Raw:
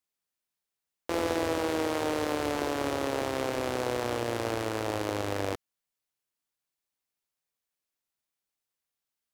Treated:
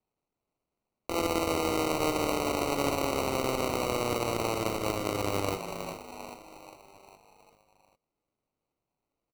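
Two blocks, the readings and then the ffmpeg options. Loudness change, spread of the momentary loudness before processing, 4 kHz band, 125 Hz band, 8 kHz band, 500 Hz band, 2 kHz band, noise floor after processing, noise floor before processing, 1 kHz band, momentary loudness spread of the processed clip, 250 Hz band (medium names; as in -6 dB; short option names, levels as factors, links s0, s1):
+1.0 dB, 3 LU, +2.5 dB, +2.0 dB, +4.0 dB, +0.5 dB, -0.5 dB, under -85 dBFS, under -85 dBFS, +2.0 dB, 14 LU, +0.5 dB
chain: -filter_complex "[0:a]asplit=7[s0][s1][s2][s3][s4][s5][s6];[s1]adelay=400,afreqshift=73,volume=0.398[s7];[s2]adelay=800,afreqshift=146,volume=0.214[s8];[s3]adelay=1200,afreqshift=219,volume=0.116[s9];[s4]adelay=1600,afreqshift=292,volume=0.0624[s10];[s5]adelay=2000,afreqshift=365,volume=0.0339[s11];[s6]adelay=2400,afreqshift=438,volume=0.0182[s12];[s0][s7][s8][s9][s10][s11][s12]amix=inputs=7:normalize=0,acrusher=samples=26:mix=1:aa=0.000001"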